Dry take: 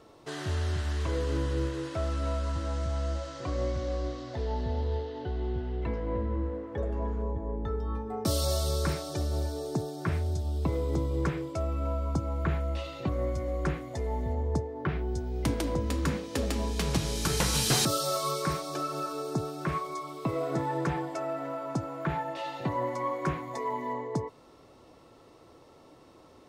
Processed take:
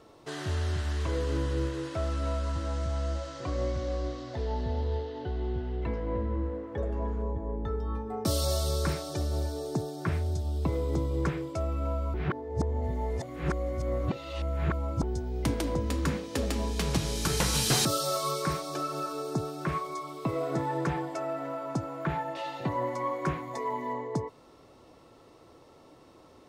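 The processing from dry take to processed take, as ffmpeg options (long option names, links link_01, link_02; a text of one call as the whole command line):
ffmpeg -i in.wav -filter_complex "[0:a]asplit=3[link_01][link_02][link_03];[link_01]atrim=end=12.142[link_04];[link_02]atrim=start=12.138:end=15.032,asetpts=PTS-STARTPTS,areverse[link_05];[link_03]atrim=start=15.028[link_06];[link_04][link_05]acrossfade=duration=0.004:curve1=hsin:curve2=hsin[link_07];[link_07][link_06]acrossfade=duration=0.004:curve1=hsin:curve2=hsin" out.wav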